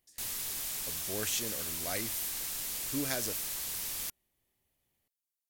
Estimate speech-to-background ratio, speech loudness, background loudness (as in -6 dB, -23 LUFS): -3.0 dB, -37.5 LUFS, -34.5 LUFS